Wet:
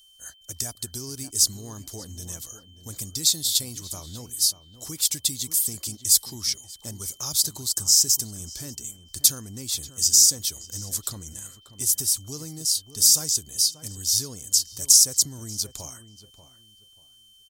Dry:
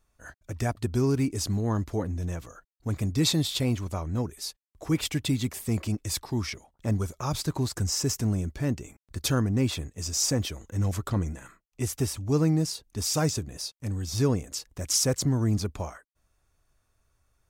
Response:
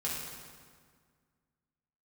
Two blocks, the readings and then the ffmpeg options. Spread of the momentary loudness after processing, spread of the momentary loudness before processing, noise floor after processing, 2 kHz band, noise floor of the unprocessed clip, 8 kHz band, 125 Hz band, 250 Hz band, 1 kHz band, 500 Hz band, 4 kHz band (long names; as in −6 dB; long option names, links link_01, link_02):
21 LU, 11 LU, −55 dBFS, can't be measured, −74 dBFS, +13.0 dB, −12.5 dB, −13.5 dB, below −10 dB, −13.5 dB, +9.0 dB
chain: -filter_complex "[0:a]aeval=exprs='val(0)+0.00178*sin(2*PI*3100*n/s)':channel_layout=same,acompressor=threshold=-28dB:ratio=4,highshelf=frequency=2200:gain=7.5,aexciter=amount=9.6:drive=1:freq=3700,asplit=2[link_01][link_02];[link_02]adelay=587,lowpass=frequency=1600:poles=1,volume=-12dB,asplit=2[link_03][link_04];[link_04]adelay=587,lowpass=frequency=1600:poles=1,volume=0.25,asplit=2[link_05][link_06];[link_06]adelay=587,lowpass=frequency=1600:poles=1,volume=0.25[link_07];[link_03][link_05][link_07]amix=inputs=3:normalize=0[link_08];[link_01][link_08]amix=inputs=2:normalize=0,volume=-8.5dB"